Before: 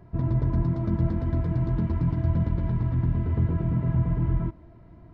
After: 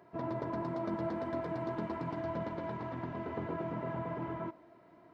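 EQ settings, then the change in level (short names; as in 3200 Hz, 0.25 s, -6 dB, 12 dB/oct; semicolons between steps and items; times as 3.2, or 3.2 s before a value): HPF 410 Hz 12 dB/oct; dynamic EQ 710 Hz, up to +4 dB, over -51 dBFS, Q 1.1; 0.0 dB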